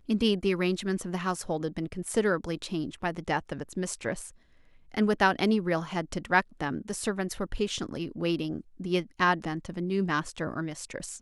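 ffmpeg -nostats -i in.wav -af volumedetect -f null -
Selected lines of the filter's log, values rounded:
mean_volume: -29.9 dB
max_volume: -8.2 dB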